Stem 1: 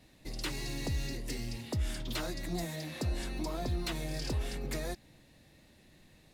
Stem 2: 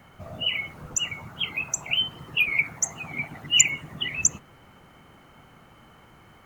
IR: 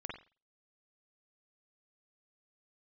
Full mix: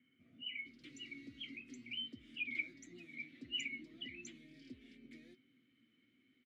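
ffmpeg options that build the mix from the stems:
-filter_complex "[0:a]adelay=400,volume=-2.5dB[a];[1:a]bandreject=f=600:w=12,volume=-5dB[b];[a][b]amix=inputs=2:normalize=0,flanger=delay=7.9:depth=1.1:regen=59:speed=1.1:shape=triangular,asplit=3[c][d][e];[c]bandpass=f=270:t=q:w=8,volume=0dB[f];[d]bandpass=f=2.29k:t=q:w=8,volume=-6dB[g];[e]bandpass=f=3.01k:t=q:w=8,volume=-9dB[h];[f][g][h]amix=inputs=3:normalize=0"

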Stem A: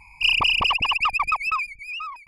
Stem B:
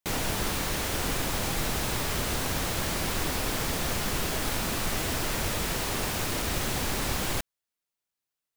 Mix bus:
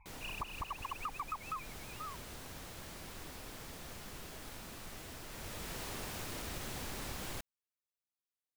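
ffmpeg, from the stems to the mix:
-filter_complex "[0:a]lowpass=f=1.6k:w=0.5412,lowpass=f=1.6k:w=1.3066,equalizer=f=300:w=0.32:g=-12,volume=-6dB[a];[1:a]volume=-12dB,afade=t=in:st=5.28:d=0.55:silence=0.446684[b];[a][b]amix=inputs=2:normalize=0,acompressor=threshold=-37dB:ratio=6"

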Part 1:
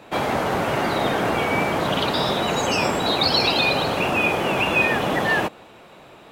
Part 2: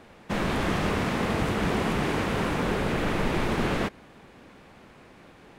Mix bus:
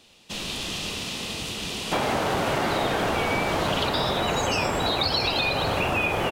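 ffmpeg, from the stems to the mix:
-filter_complex "[0:a]asubboost=boost=4.5:cutoff=96,adelay=1800,volume=2dB[a];[1:a]lowpass=f=4k:p=1,bandreject=f=2.2k:w=10,aexciter=amount=12:drive=4.5:freq=2.5k,volume=-10dB[b];[a][b]amix=inputs=2:normalize=0,acompressor=threshold=-21dB:ratio=6"

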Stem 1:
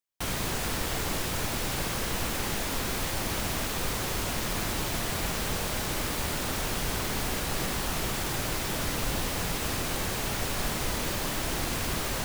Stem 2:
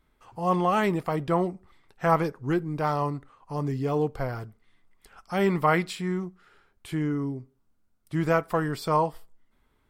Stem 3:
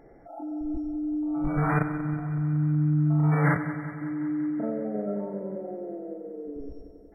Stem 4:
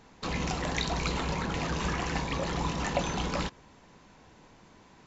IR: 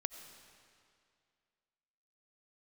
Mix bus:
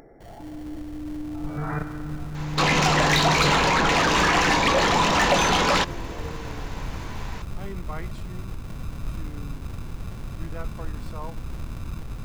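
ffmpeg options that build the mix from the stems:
-filter_complex "[0:a]asubboost=boost=8.5:cutoff=200,acrusher=samples=35:mix=1:aa=0.000001,volume=-15dB[a];[1:a]adelay=2250,volume=-15.5dB[b];[2:a]acompressor=mode=upward:threshold=-37dB:ratio=2.5,volume=-5dB[c];[3:a]asplit=2[d][e];[e]highpass=f=720:p=1,volume=23dB,asoftclip=type=tanh:threshold=-13.5dB[f];[d][f]amix=inputs=2:normalize=0,lowpass=f=4.8k:p=1,volume=-6dB,adelay=2350,volume=3dB[g];[a][b][c][g]amix=inputs=4:normalize=0"

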